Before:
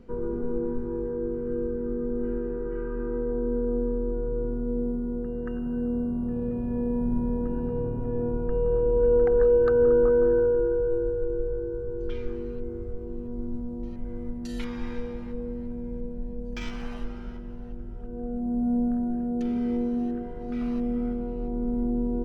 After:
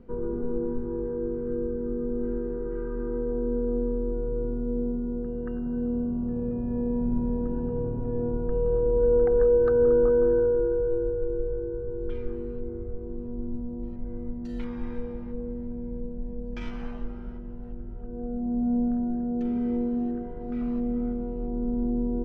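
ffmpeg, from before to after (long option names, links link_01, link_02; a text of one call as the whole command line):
ffmpeg -i in.wav -af "asetnsamples=nb_out_samples=441:pad=0,asendcmd='0.99 lowpass f 2000;1.55 lowpass f 1300;13.31 lowpass f 1000;16.25 lowpass f 1600;16.91 lowpass f 1000;17.63 lowpass f 1400;20.61 lowpass f 1100',lowpass=frequency=1500:poles=1" out.wav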